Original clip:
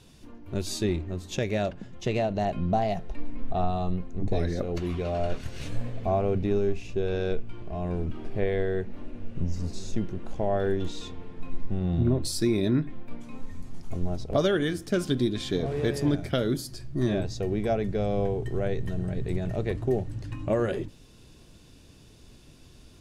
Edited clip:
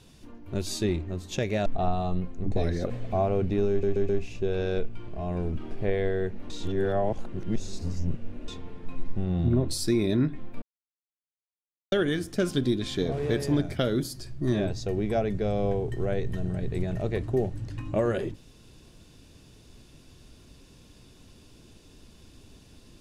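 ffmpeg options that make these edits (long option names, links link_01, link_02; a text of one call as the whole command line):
ffmpeg -i in.wav -filter_complex "[0:a]asplit=10[link_01][link_02][link_03][link_04][link_05][link_06][link_07][link_08][link_09][link_10];[link_01]atrim=end=1.662[link_11];[link_02]atrim=start=3.418:end=4.662[link_12];[link_03]atrim=start=5.828:end=6.762[link_13];[link_04]atrim=start=6.628:end=6.762[link_14];[link_05]atrim=start=6.628:end=6.762[link_15];[link_06]atrim=start=6.628:end=9.042[link_16];[link_07]atrim=start=9.038:end=11.022,asetpts=PTS-STARTPTS,areverse[link_17];[link_08]atrim=start=11.018:end=13.16,asetpts=PTS-STARTPTS,afade=type=out:start_time=2.138:duration=0.004:curve=hsin[link_18];[link_09]atrim=start=13.16:end=14.46,asetpts=PTS-STARTPTS,volume=0[link_19];[link_10]atrim=start=14.46,asetpts=PTS-STARTPTS,afade=type=in:duration=0.004:curve=hsin[link_20];[link_11][link_12]acrossfade=duration=0.004:curve1=hsin:curve2=hsin[link_21];[link_21][link_13]acrossfade=duration=0.004:curve1=hsin:curve2=hsin[link_22];[link_22][link_14]acrossfade=duration=0.004:curve1=hsin:curve2=hsin[link_23];[link_23][link_15]acrossfade=duration=0.004:curve1=hsin:curve2=hsin[link_24];[link_24][link_16]acrossfade=duration=0.004:curve1=hsin:curve2=hsin[link_25];[link_25][link_17]acrossfade=duration=0.004:curve1=hsin:curve2=hsin[link_26];[link_18][link_19][link_20]concat=n=3:v=0:a=1[link_27];[link_26][link_27]acrossfade=duration=0.004:curve1=hsin:curve2=hsin" out.wav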